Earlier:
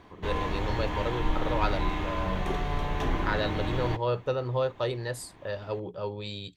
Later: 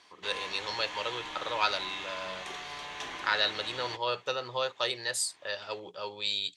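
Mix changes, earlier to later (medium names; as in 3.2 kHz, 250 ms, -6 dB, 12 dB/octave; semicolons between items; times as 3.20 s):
background -7.5 dB; master: add frequency weighting ITU-R 468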